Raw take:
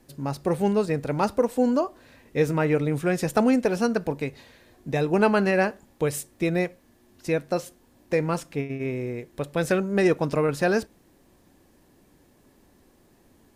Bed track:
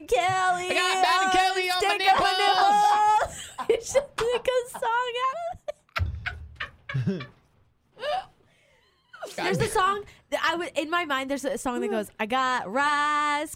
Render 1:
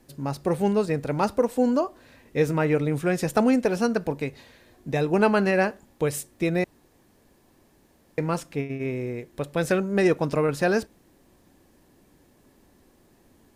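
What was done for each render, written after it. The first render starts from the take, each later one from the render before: 6.64–8.18 s: room tone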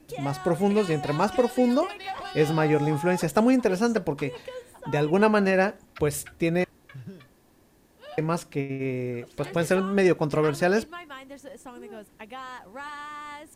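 add bed track -14.5 dB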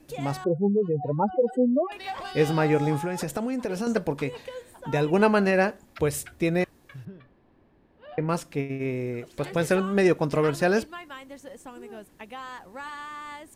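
0.44–1.92 s: spectral contrast enhancement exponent 2.8; 2.97–3.87 s: compression 12:1, threshold -24 dBFS; 7.05–8.29 s: distance through air 390 m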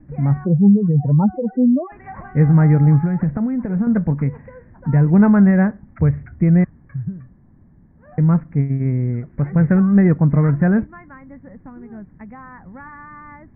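steep low-pass 2.1 kHz 72 dB/octave; resonant low shelf 270 Hz +13.5 dB, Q 1.5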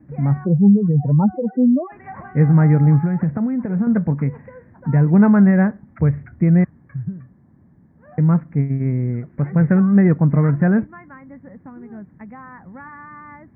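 high-pass 95 Hz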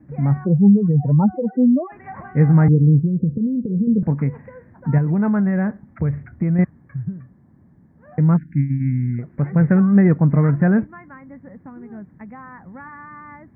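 2.68–4.03 s: steep low-pass 510 Hz 96 dB/octave; 4.98–6.59 s: compression, threshold -15 dBFS; 8.37–9.19 s: brick-wall FIR band-stop 350–1400 Hz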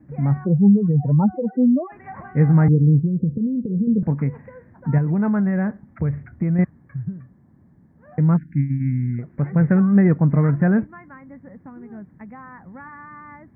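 trim -1.5 dB

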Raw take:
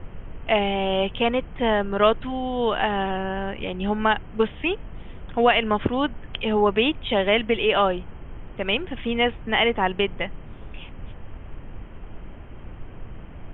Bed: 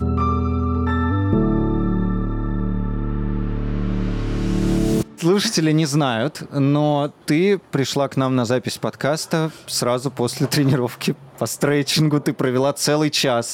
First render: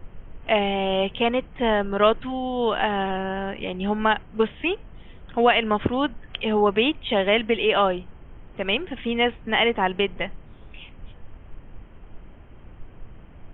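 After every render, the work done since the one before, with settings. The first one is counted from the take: noise print and reduce 6 dB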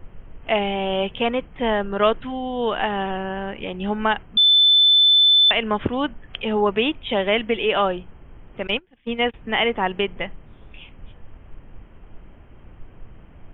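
4.37–5.51 s: bleep 3.52 kHz -11 dBFS; 8.67–9.34 s: gate -26 dBFS, range -25 dB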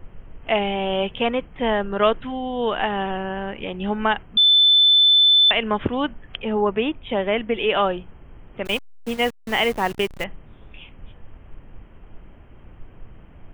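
6.36–7.57 s: distance through air 360 m; 8.65–10.24 s: send-on-delta sampling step -32 dBFS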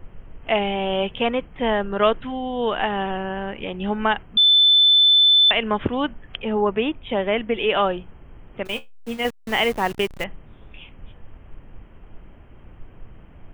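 8.63–9.25 s: feedback comb 76 Hz, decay 0.18 s, mix 70%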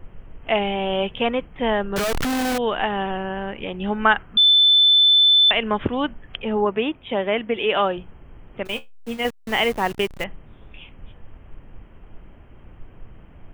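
1.96–2.58 s: one-bit comparator; 4.05–4.52 s: peaking EQ 1.4 kHz +8 dB; 6.65–7.98 s: high-pass 130 Hz 6 dB/octave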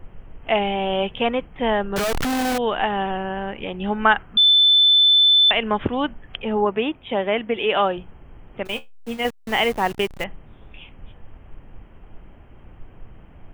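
peaking EQ 790 Hz +2.5 dB 0.36 oct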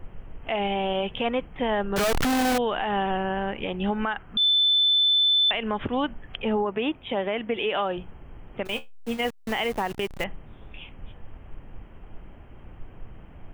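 compression 4:1, threshold -20 dBFS, peak gain reduction 9 dB; peak limiter -16.5 dBFS, peak gain reduction 8.5 dB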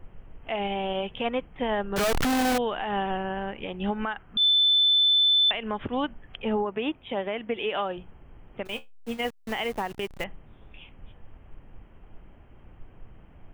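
upward expansion 1.5:1, over -31 dBFS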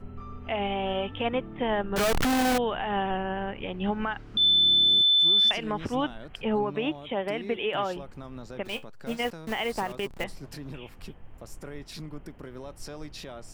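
add bed -23.5 dB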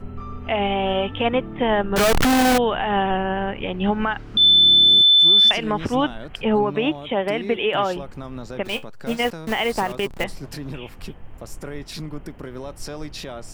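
trim +7.5 dB

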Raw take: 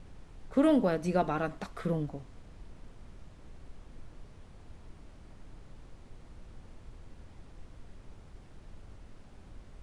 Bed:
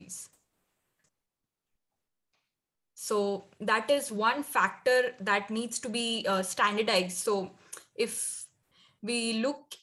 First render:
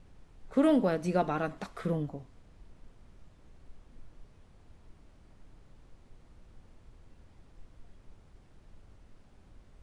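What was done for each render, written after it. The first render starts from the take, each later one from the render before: noise print and reduce 6 dB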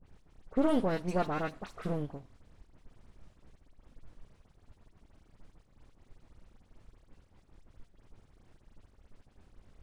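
partial rectifier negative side -12 dB; phase dispersion highs, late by 57 ms, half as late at 2.6 kHz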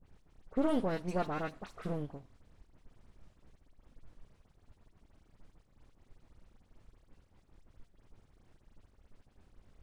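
trim -3 dB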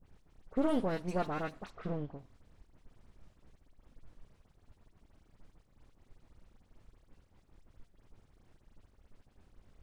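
1.70–2.19 s: distance through air 130 m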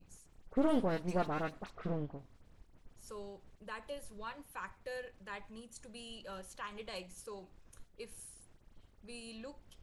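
add bed -18.5 dB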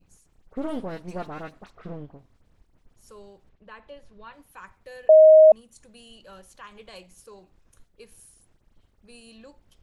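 3.49–4.33 s: low-pass 3.7 kHz; 5.09–5.52 s: bleep 627 Hz -8 dBFS

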